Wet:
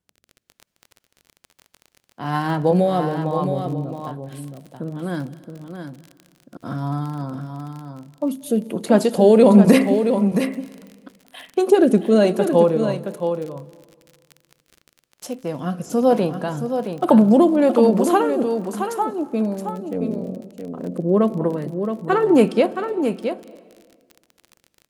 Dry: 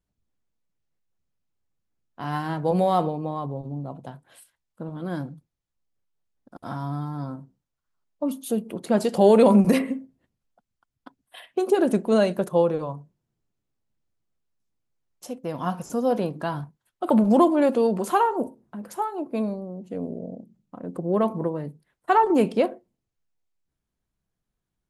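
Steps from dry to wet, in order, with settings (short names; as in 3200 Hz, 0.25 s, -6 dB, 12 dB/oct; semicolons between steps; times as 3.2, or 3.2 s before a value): HPF 94 Hz; crackle 23/s -34 dBFS; rotary speaker horn 1.1 Hz; echo 0.671 s -7.5 dB; on a send at -20 dB: reverb RT60 1.7 s, pre-delay 0.173 s; on the sum: gain +7 dB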